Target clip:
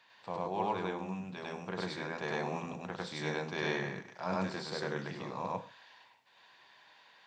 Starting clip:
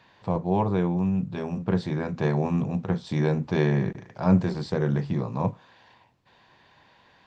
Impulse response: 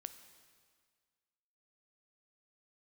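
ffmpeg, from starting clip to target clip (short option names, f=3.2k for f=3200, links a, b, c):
-filter_complex "[0:a]highpass=f=1.4k:p=1,asplit=2[a][b];[1:a]atrim=start_sample=2205,atrim=end_sample=6174,adelay=100[c];[b][c]afir=irnorm=-1:irlink=0,volume=6.5dB[d];[a][d]amix=inputs=2:normalize=0,volume=-3dB"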